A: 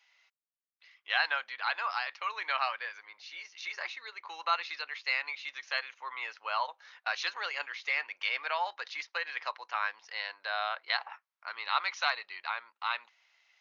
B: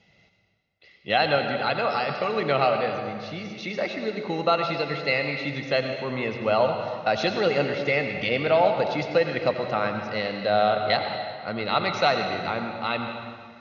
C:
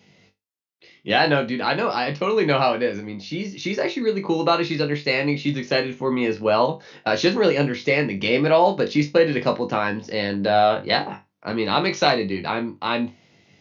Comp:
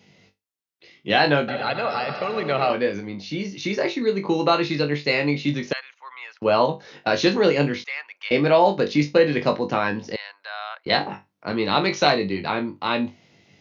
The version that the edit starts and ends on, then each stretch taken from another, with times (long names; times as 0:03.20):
C
0:01.48–0:02.70: punch in from B
0:05.73–0:06.42: punch in from A
0:07.84–0:08.31: punch in from A
0:10.16–0:10.86: punch in from A